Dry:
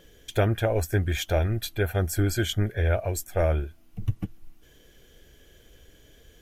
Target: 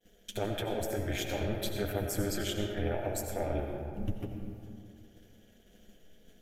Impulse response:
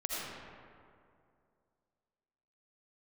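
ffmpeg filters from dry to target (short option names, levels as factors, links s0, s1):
-filter_complex "[0:a]agate=range=0.0224:threshold=0.00447:ratio=3:detection=peak,equalizer=f=125:t=o:w=1:g=-12,equalizer=f=500:t=o:w=1:g=4,equalizer=f=1000:t=o:w=1:g=-6,alimiter=limit=0.075:level=0:latency=1:release=83,tremolo=f=210:d=0.919,asplit=2[s0][s1];[1:a]atrim=start_sample=2205,adelay=10[s2];[s1][s2]afir=irnorm=-1:irlink=0,volume=0.531[s3];[s0][s3]amix=inputs=2:normalize=0"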